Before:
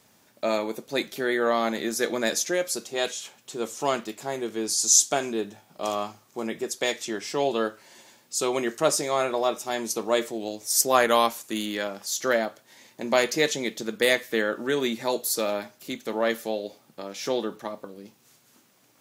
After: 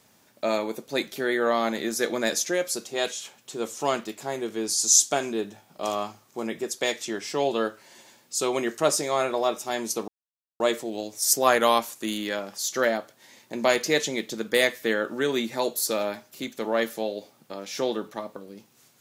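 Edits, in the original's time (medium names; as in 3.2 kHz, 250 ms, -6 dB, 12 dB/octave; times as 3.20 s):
10.08 s: insert silence 0.52 s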